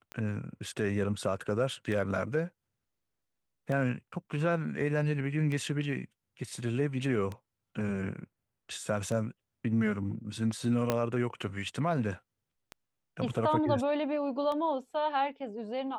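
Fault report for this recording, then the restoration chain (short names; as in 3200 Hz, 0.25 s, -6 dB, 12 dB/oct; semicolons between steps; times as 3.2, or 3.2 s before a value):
tick 33 1/3 rpm -24 dBFS
10.9 pop -13 dBFS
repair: de-click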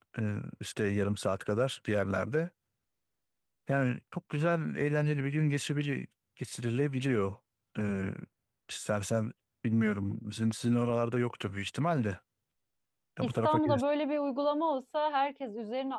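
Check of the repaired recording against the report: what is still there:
10.9 pop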